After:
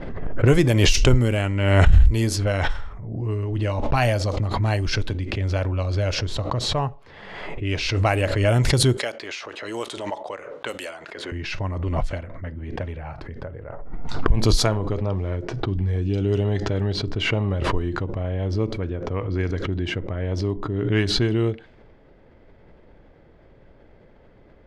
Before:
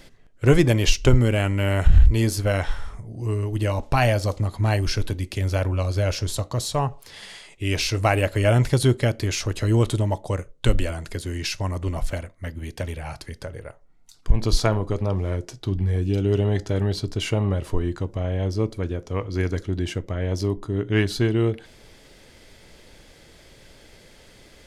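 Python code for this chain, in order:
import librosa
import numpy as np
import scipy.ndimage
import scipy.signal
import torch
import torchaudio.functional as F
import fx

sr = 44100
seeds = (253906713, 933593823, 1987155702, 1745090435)

y = fx.env_lowpass(x, sr, base_hz=1100.0, full_db=-13.5)
y = fx.highpass(y, sr, hz=570.0, slope=12, at=(8.97, 11.32))
y = fx.pre_swell(y, sr, db_per_s=40.0)
y = F.gain(torch.from_numpy(y), -1.0).numpy()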